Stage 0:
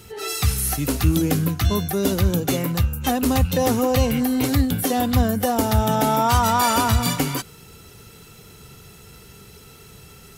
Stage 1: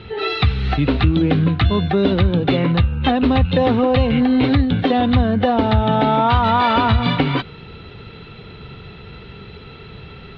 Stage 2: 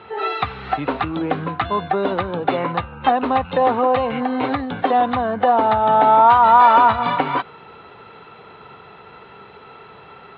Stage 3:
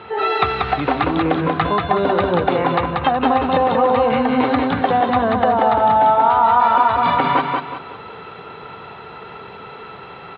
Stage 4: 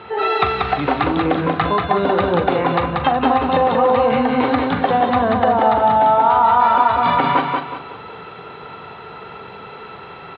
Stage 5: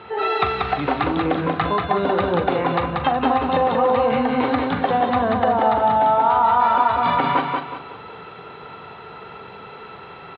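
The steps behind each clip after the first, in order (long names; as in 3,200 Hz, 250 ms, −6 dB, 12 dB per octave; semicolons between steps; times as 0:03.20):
Chebyshev low-pass filter 3,900 Hz, order 5; downward compressor 3 to 1, threshold −22 dBFS, peak gain reduction 8 dB; level +9 dB
resonant band-pass 950 Hz, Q 1.7; level +7 dB
downward compressor 6 to 1, threshold −18 dBFS, peak gain reduction 10 dB; on a send: repeating echo 185 ms, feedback 35%, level −3 dB; on the sum: level +4.5 dB
double-tracking delay 41 ms −11 dB
far-end echo of a speakerphone 120 ms, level −30 dB; level −3 dB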